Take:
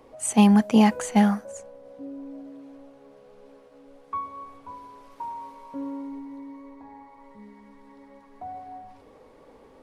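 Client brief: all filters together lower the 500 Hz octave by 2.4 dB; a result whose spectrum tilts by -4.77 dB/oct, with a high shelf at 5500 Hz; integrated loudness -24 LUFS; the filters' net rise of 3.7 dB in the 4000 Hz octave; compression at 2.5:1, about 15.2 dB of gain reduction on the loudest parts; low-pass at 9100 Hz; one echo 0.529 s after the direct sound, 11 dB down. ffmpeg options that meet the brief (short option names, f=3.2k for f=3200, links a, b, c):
-af "lowpass=9.1k,equalizer=f=500:t=o:g=-3,equalizer=f=4k:t=o:g=8.5,highshelf=f=5.5k:g=-8,acompressor=threshold=-37dB:ratio=2.5,aecho=1:1:529:0.282,volume=15.5dB"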